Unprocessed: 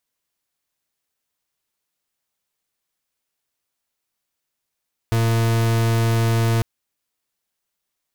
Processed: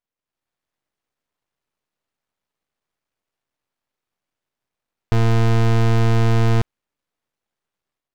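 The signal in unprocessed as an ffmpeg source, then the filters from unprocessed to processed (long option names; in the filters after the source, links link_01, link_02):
-f lavfi -i "aevalsrc='0.126*(2*lt(mod(114*t,1),0.42)-1)':duration=1.5:sample_rate=44100"
-af "lowpass=frequency=1300:poles=1,dynaudnorm=framelen=240:gausssize=3:maxgain=8dB,aeval=exprs='max(val(0),0)':channel_layout=same"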